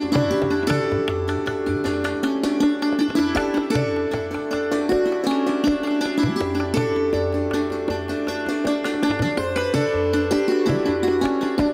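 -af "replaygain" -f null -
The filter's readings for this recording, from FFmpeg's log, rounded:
track_gain = +3.3 dB
track_peak = 0.306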